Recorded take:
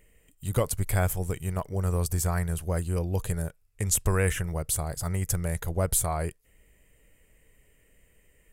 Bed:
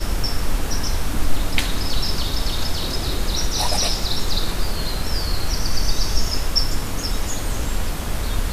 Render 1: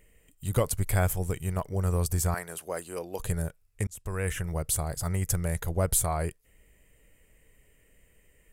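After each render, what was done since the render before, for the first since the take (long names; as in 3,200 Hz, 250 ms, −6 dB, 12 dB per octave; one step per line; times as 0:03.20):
0:02.34–0:03.20: high-pass filter 390 Hz
0:03.87–0:04.57: fade in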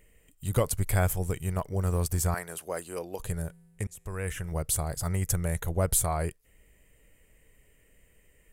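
0:01.81–0:02.21: mu-law and A-law mismatch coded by A
0:03.15–0:04.52: tuned comb filter 56 Hz, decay 1.9 s, harmonics odd, mix 30%
0:05.32–0:05.82: Butterworth band-reject 4,900 Hz, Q 5.9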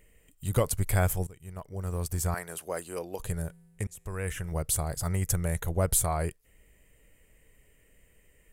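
0:01.27–0:02.56: fade in, from −21.5 dB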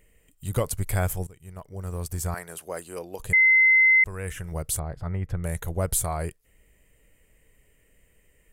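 0:03.33–0:04.04: beep over 2,060 Hz −14 dBFS
0:04.79–0:05.44: high-frequency loss of the air 400 metres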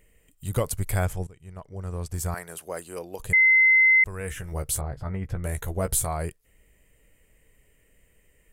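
0:01.05–0:02.14: high-frequency loss of the air 53 metres
0:04.19–0:06.07: double-tracking delay 15 ms −7 dB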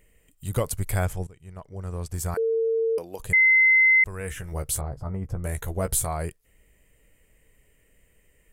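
0:02.37–0:02.98: beep over 452 Hz −20.5 dBFS
0:04.89–0:05.45: flat-topped bell 2,500 Hz −10.5 dB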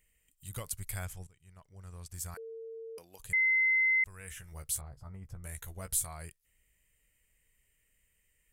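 guitar amp tone stack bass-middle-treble 5-5-5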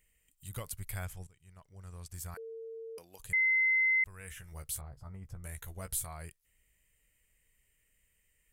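dynamic equaliser 7,200 Hz, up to −6 dB, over −51 dBFS, Q 0.84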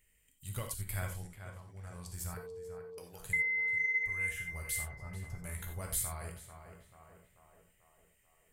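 tape delay 439 ms, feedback 63%, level −7.5 dB, low-pass 2,000 Hz
reverb whose tail is shaped and stops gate 110 ms flat, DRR 3 dB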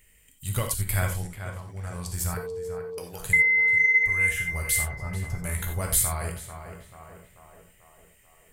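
level +12 dB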